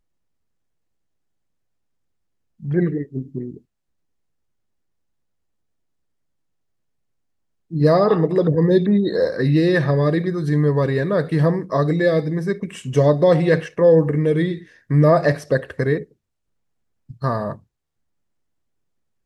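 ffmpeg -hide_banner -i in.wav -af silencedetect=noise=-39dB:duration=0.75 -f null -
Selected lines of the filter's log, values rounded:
silence_start: 0.00
silence_end: 2.60 | silence_duration: 2.60
silence_start: 3.58
silence_end: 7.71 | silence_duration: 4.13
silence_start: 16.04
silence_end: 17.10 | silence_duration: 1.06
silence_start: 17.58
silence_end: 19.25 | silence_duration: 1.68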